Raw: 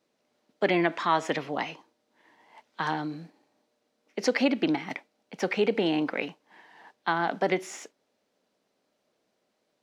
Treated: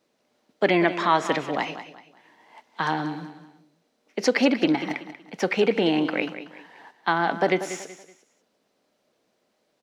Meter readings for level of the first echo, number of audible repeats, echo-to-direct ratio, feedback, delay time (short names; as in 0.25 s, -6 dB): -12.0 dB, 3, -11.5 dB, 33%, 0.188 s